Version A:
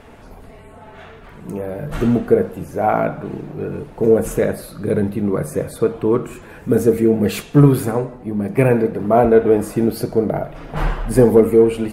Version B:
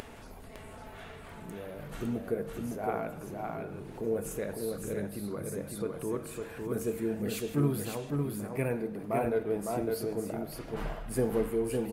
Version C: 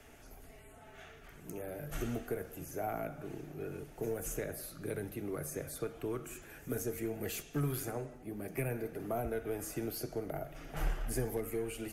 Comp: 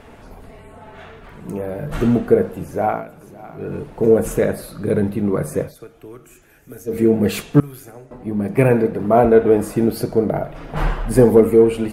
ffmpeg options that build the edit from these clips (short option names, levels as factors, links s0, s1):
-filter_complex "[2:a]asplit=2[s0][s1];[0:a]asplit=4[s2][s3][s4][s5];[s2]atrim=end=3.05[s6];[1:a]atrim=start=2.81:end=3.73[s7];[s3]atrim=start=3.49:end=5.77[s8];[s0]atrim=start=5.61:end=7.01[s9];[s4]atrim=start=6.85:end=7.602[s10];[s1]atrim=start=7.598:end=8.112[s11];[s5]atrim=start=8.108[s12];[s6][s7]acrossfade=d=0.24:c1=tri:c2=tri[s13];[s13][s8]acrossfade=d=0.24:c1=tri:c2=tri[s14];[s14][s9]acrossfade=d=0.16:c1=tri:c2=tri[s15];[s15][s10]acrossfade=d=0.16:c1=tri:c2=tri[s16];[s16][s11]acrossfade=d=0.004:c1=hsin:c2=hsin[s17];[s17][s12]acrossfade=d=0.004:c1=hsin:c2=hsin"